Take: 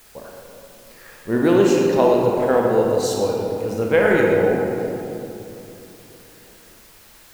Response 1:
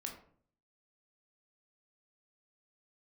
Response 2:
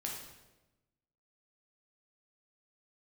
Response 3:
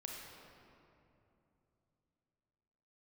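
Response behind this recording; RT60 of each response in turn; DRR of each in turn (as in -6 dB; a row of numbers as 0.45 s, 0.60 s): 3; 0.55 s, 1.1 s, 2.9 s; 1.0 dB, -2.0 dB, -1.5 dB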